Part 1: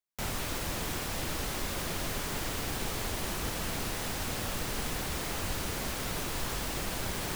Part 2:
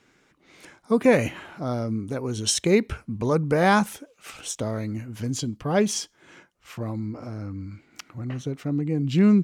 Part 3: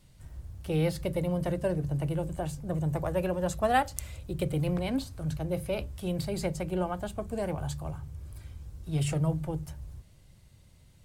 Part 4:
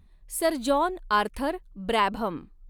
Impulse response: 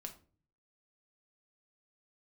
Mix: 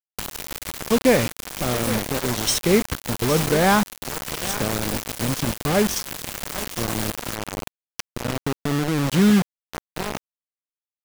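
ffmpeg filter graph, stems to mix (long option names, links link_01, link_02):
-filter_complex "[0:a]volume=-0.5dB,asplit=2[link_01][link_02];[link_02]volume=-19.5dB[link_03];[1:a]acontrast=29,bandreject=frequency=7200:width=7.5,volume=-3.5dB,asplit=2[link_04][link_05];[link_05]volume=-14dB[link_06];[2:a]acompressor=threshold=-34dB:ratio=3,highshelf=frequency=2900:gain=-11.5,volume=-7dB,asplit=2[link_07][link_08];[link_08]volume=-8.5dB[link_09];[3:a]acompressor=threshold=-38dB:ratio=1.5,adelay=1500,volume=-5.5dB,asplit=2[link_10][link_11];[link_11]volume=-10dB[link_12];[link_07][link_10]amix=inputs=2:normalize=0,equalizer=frequency=2200:width_type=o:width=1.5:gain=-7,alimiter=level_in=5.5dB:limit=-24dB:level=0:latency=1:release=436,volume=-5.5dB,volume=0dB[link_13];[link_03][link_06][link_09][link_12]amix=inputs=4:normalize=0,aecho=0:1:814|1628|2442:1|0.18|0.0324[link_14];[link_01][link_04][link_13][link_14]amix=inputs=4:normalize=0,acompressor=mode=upward:threshold=-23dB:ratio=2.5,acrusher=bits=3:mix=0:aa=0.000001"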